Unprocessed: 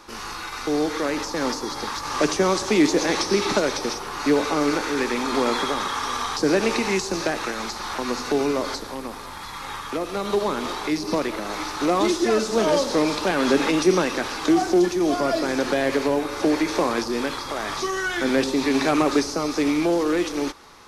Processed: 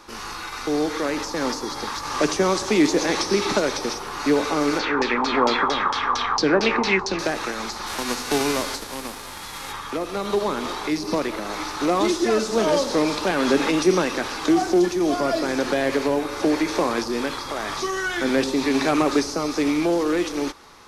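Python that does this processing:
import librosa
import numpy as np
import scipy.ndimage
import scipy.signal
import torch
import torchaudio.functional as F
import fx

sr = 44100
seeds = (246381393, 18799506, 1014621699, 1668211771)

y = fx.filter_lfo_lowpass(x, sr, shape='saw_down', hz=4.4, low_hz=820.0, high_hz=5700.0, q=3.2, at=(4.79, 7.19))
y = fx.envelope_flatten(y, sr, power=0.6, at=(7.86, 9.71), fade=0.02)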